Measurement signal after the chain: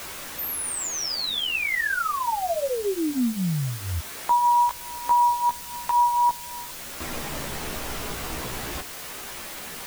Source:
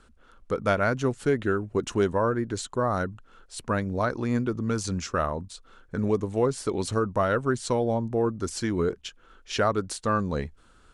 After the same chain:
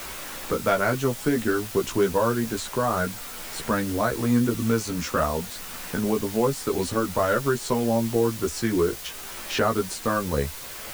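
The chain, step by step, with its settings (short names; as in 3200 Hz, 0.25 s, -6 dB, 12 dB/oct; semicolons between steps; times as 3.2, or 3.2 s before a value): added noise white -41 dBFS; chorus voices 4, 0.27 Hz, delay 15 ms, depth 2.7 ms; three-band squash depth 40%; gain +5 dB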